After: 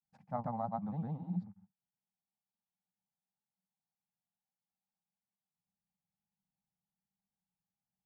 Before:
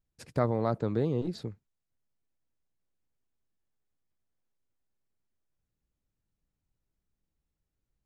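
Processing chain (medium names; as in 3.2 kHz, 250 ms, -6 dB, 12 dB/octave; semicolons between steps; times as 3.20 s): two resonant band-passes 390 Hz, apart 2.1 oct; granulator, spray 100 ms, pitch spread up and down by 0 st; trim +4 dB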